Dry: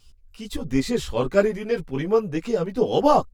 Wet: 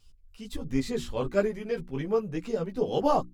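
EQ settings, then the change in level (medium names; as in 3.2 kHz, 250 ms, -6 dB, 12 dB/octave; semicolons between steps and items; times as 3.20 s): bass shelf 240 Hz +4 dB; hum notches 60/120/180/240/300/360 Hz; -7.5 dB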